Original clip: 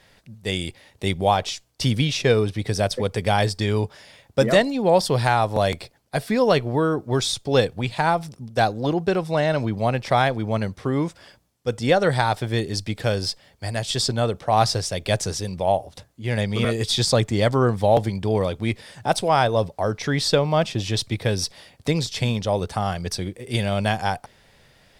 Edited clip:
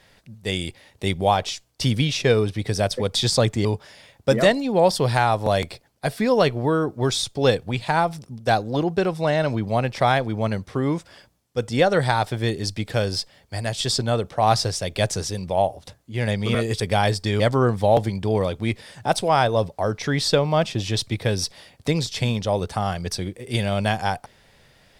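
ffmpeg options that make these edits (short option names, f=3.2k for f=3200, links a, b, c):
-filter_complex "[0:a]asplit=5[a][b][c][d][e];[a]atrim=end=3.152[f];[b]atrim=start=16.898:end=17.402[g];[c]atrim=start=3.748:end=16.902[h];[d]atrim=start=3.148:end=3.752[i];[e]atrim=start=17.398[j];[f][g]acrossfade=d=0.004:c1=hsin:c2=hsin[k];[k][h]acrossfade=d=0.004:c1=hsin:c2=hsin[l];[l][i]acrossfade=d=0.004:c1=hsin:c2=hsin[m];[m][j]acrossfade=d=0.004:c1=hsin:c2=hsin"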